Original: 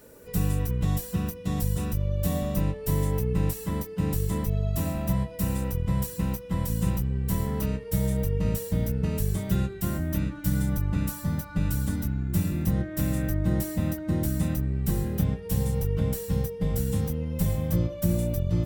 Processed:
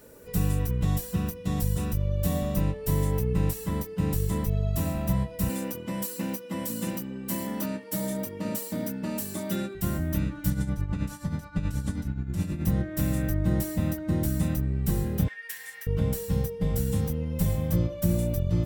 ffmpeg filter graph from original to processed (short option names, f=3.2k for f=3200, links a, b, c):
-filter_complex "[0:a]asettb=1/sr,asplit=3[a][b][c];[a]atrim=end=5.494[d];[b]atrim=start=5.49:end=9.75,asetpts=PTS-STARTPTS,afade=t=in:d=0.004:c=qsin,afade=t=out:st=4.256:d=0.004:c=qsin,highpass=f=160:w=0.5412,highpass=f=160:w=1.3066,aecho=1:1:3.4:0.81,atrim=end_sample=187866[e];[c]atrim=start=9.746[f];[d][e]acrossfade=d=0.004:c1=hsin:c2=qsin[g];[g][f]acrossfade=d=0.004:c1=qsin:c2=hsin,asettb=1/sr,asplit=3[h][i][j];[h]atrim=end=10.504[k];[i]atrim=start=10.5:end=12.65,asetpts=PTS-STARTPTS,afade=t=in:d=0.004:c=qsin,afade=t=out:st=2.146:d=0.004:c=qsin,lowpass=8.8k,tremolo=f=9.4:d=0.65[l];[j]atrim=start=12.646[m];[k][l]acrossfade=d=0.004:c1=hsin:c2=qsin[n];[n][m]acrossfade=d=0.004:c1=qsin:c2=hsin,asettb=1/sr,asplit=3[o][p][q];[o]atrim=end=15.284[r];[p]atrim=start=15.28:end=15.87,asetpts=PTS-STARTPTS,afade=t=in:d=0.004:c=qsin,afade=t=out:st=0.586:d=0.004:c=qsin,acompressor=threshold=-29dB:ratio=2:attack=3.2:release=140:knee=1:detection=peak,highpass=f=1.8k:t=q:w=8.8[s];[q]atrim=start=15.866[t];[r][s]acrossfade=d=0.004:c1=hsin:c2=qsin[u];[u][t]acrossfade=d=0.004:c1=qsin:c2=hsin"